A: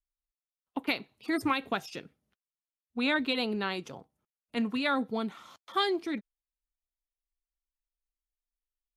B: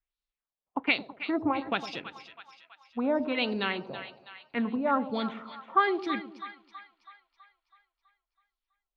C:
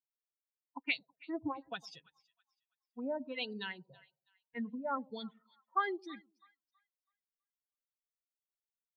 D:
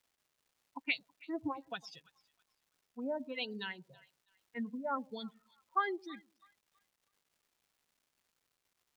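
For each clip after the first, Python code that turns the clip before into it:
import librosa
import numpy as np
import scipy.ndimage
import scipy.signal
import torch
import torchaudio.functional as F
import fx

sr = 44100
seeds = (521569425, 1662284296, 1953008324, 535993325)

y1 = fx.filter_lfo_lowpass(x, sr, shape='sine', hz=1.2, low_hz=680.0, high_hz=4200.0, q=2.4)
y1 = fx.echo_split(y1, sr, split_hz=870.0, low_ms=107, high_ms=326, feedback_pct=52, wet_db=-11.5)
y2 = fx.bin_expand(y1, sr, power=2.0)
y2 = fx.high_shelf(y2, sr, hz=4900.0, db=8.0)
y2 = F.gain(torch.from_numpy(y2), -7.5).numpy()
y3 = fx.dmg_crackle(y2, sr, seeds[0], per_s=520.0, level_db=-65.0)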